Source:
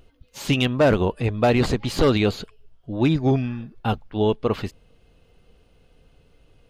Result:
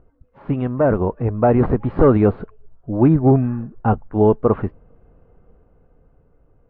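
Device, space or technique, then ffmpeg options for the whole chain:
action camera in a waterproof case: -af "lowpass=f=1400:w=0.5412,lowpass=f=1400:w=1.3066,dynaudnorm=f=320:g=9:m=2.24" -ar 32000 -c:a aac -b:a 48k

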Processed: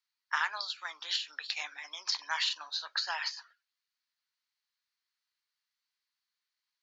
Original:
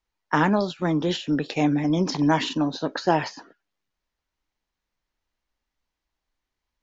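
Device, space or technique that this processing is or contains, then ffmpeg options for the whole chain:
headphones lying on a table: -af "highpass=f=1200:w=0.5412,highpass=f=1200:w=1.3066,equalizer=f=4400:t=o:w=0.38:g=9.5,volume=0.631"

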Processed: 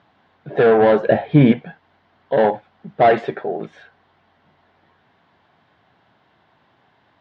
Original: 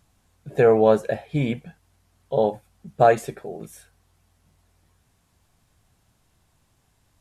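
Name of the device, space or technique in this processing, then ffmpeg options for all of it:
overdrive pedal into a guitar cabinet: -filter_complex "[0:a]asplit=2[s0][s1];[s1]highpass=f=720:p=1,volume=14.1,asoftclip=type=tanh:threshold=0.668[s2];[s0][s2]amix=inputs=2:normalize=0,lowpass=f=2000:p=1,volume=0.501,highpass=110,equalizer=f=500:t=q:w=4:g=-3,equalizer=f=1200:t=q:w=4:g=-4,equalizer=f=2500:t=q:w=4:g=-7,lowpass=f=3500:w=0.5412,lowpass=f=3500:w=1.3066,asettb=1/sr,asplit=3[s3][s4][s5];[s3]atrim=end=1.034[s6];[s4]atrim=start=1.03:end=1.52,asetpts=PTS-STARTPTS,afade=t=in:d=0.004:c=qsin,afade=t=out:st=0.486:d=0.004:c=qsin,lowshelf=f=360:g=11[s7];[s5]atrim=start=1.516[s8];[s6][s7]acrossfade=d=0.004:c1=hsin:c2=qsin[s9];[s9][s8]acrossfade=d=0.004:c1=qsin:c2=hsin"

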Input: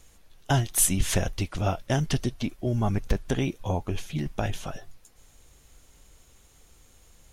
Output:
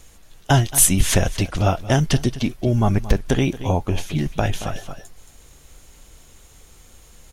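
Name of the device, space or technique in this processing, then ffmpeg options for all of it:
ducked delay: -filter_complex "[0:a]asplit=3[s0][s1][s2];[s1]adelay=225,volume=0.447[s3];[s2]apad=whole_len=333079[s4];[s3][s4]sidechaincompress=threshold=0.0251:ratio=8:attack=12:release=454[s5];[s0][s5]amix=inputs=2:normalize=0,volume=2.37"

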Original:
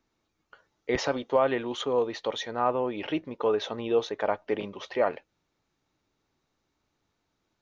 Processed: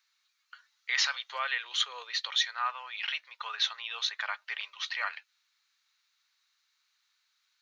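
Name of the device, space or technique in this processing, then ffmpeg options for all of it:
headphones lying on a table: -filter_complex "[0:a]highpass=f=450:p=1,asettb=1/sr,asplit=3[s0][s1][s2];[s0]atrim=end=1.334[s3];[s1]atrim=start=1.33:end=2.28,asetpts=PTS-STARTPTS,afade=t=in:d=0.004:c=qsin,afade=t=out:st=0.946:d=0.004:c=qsin,lowshelf=f=620:t=q:w=1.5:g=6[s4];[s2]atrim=start=2.276[s5];[s3][s4]acrossfade=d=0.004:c1=hsin:c2=qsin[s6];[s6][s5]acrossfade=d=0.004:c1=qsin:c2=hsin,highpass=f=1400:w=0.5412,highpass=f=1400:w=1.3066,equalizer=f=4200:t=o:w=0.32:g=7,volume=2"

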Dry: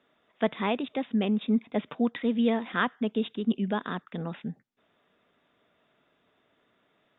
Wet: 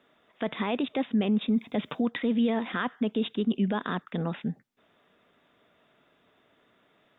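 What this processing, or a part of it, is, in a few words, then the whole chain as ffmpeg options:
stacked limiters: -filter_complex "[0:a]asettb=1/sr,asplit=3[s0][s1][s2];[s0]atrim=end=1.494[s3];[s1]atrim=start=1.49:end=2.02,asetpts=PTS-STARTPTS,afade=t=in:d=0.004:c=qsin,afade=t=out:st=0.526:d=0.004:c=qsin,bass=f=250:g=3,treble=f=4000:g=11[s4];[s2]atrim=start=2.016[s5];[s3][s4]acrossfade=d=0.004:c1=hsin:c2=qsin[s6];[s6][s5]acrossfade=d=0.004:c1=qsin:c2=hsin,alimiter=limit=0.133:level=0:latency=1:release=76,alimiter=limit=0.0794:level=0:latency=1:release=16,volume=1.58"

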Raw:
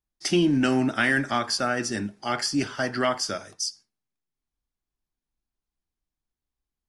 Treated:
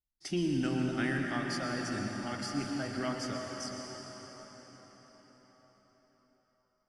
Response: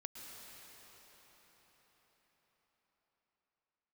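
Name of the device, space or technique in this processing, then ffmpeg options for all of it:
cathedral: -filter_complex "[0:a]lowshelf=f=210:g=10[s0];[1:a]atrim=start_sample=2205[s1];[s0][s1]afir=irnorm=-1:irlink=0,volume=0.376"

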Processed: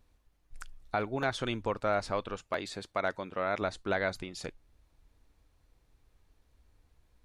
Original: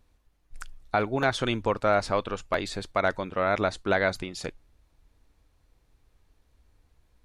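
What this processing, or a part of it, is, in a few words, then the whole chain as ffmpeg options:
parallel compression: -filter_complex "[0:a]asplit=2[s0][s1];[s1]acompressor=threshold=0.00708:ratio=6,volume=0.708[s2];[s0][s2]amix=inputs=2:normalize=0,asettb=1/sr,asplit=3[s3][s4][s5];[s3]atrim=end=2.374[s6];[s4]atrim=start=2.37:end=3.62,asetpts=PTS-STARTPTS,afade=t=in:d=0.004:c=qsin,afade=t=out:st=1.246:d=0.004:c=qsin,highpass=f=130:p=1[s7];[s5]atrim=start=3.616[s8];[s6][s7]acrossfade=d=0.004:c1=hsin:c2=qsin[s9];[s9][s8]acrossfade=d=0.004:c1=qsin:c2=hsin,volume=0.447"

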